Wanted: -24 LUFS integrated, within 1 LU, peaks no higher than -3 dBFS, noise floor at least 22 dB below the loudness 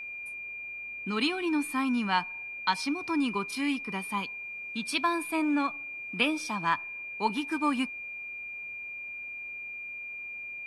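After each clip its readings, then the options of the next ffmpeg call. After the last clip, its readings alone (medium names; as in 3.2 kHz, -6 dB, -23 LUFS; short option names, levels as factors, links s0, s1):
steady tone 2.4 kHz; tone level -37 dBFS; loudness -31.5 LUFS; peak level -12.0 dBFS; loudness target -24.0 LUFS
-> -af "bandreject=f=2400:w=30"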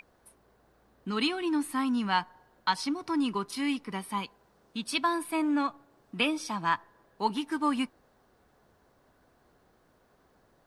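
steady tone not found; loudness -30.5 LUFS; peak level -12.5 dBFS; loudness target -24.0 LUFS
-> -af "volume=2.11"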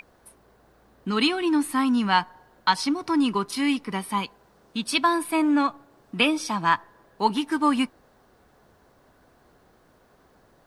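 loudness -24.0 LUFS; peak level -6.0 dBFS; noise floor -60 dBFS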